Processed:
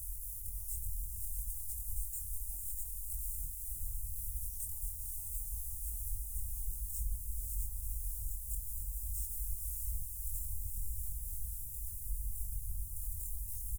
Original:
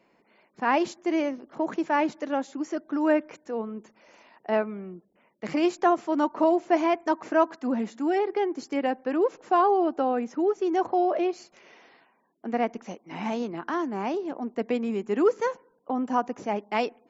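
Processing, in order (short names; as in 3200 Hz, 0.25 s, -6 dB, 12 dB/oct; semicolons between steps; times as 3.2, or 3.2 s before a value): zero-crossing step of -29 dBFS; wind noise 400 Hz -22 dBFS; inverse Chebyshev band-stop 150–2800 Hz, stop band 60 dB; low shelf 150 Hz -10.5 dB; compressor, threshold -42 dBFS, peak gain reduction 15.5 dB; echo with dull and thin repeats by turns 0.397 s, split 2200 Hz, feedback 61%, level -5 dB; varispeed +24%; doubler 23 ms -4 dB; diffused feedback echo 0.511 s, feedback 71%, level -4.5 dB; gain +4.5 dB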